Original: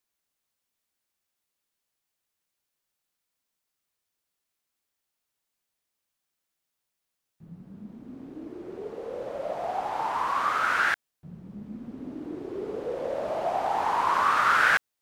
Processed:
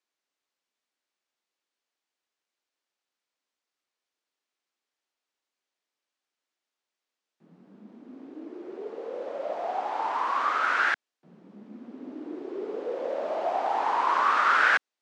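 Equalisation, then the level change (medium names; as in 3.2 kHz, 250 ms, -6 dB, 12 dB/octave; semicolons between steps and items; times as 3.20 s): high-pass 250 Hz 24 dB/octave; Bessel low-pass 5.4 kHz, order 4; 0.0 dB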